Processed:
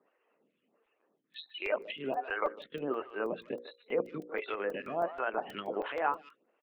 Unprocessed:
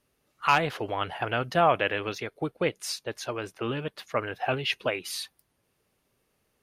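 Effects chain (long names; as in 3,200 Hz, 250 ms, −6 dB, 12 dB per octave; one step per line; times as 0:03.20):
played backwards from end to start
downward compressor 3 to 1, threshold −32 dBFS, peak gain reduction 12 dB
spectral peaks only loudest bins 64
linear-prediction vocoder at 8 kHz pitch kept
far-end echo of a speakerphone 150 ms, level −14 dB
treble cut that deepens with the level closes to 1,600 Hz, closed at −31 dBFS
high-pass filter 210 Hz 24 dB per octave
mains-hum notches 60/120/180/240/300/360/420/480/540 Hz
regular buffer underruns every 0.16 s, samples 128, zero, from 0:00.86
phaser with staggered stages 1.4 Hz
level +5.5 dB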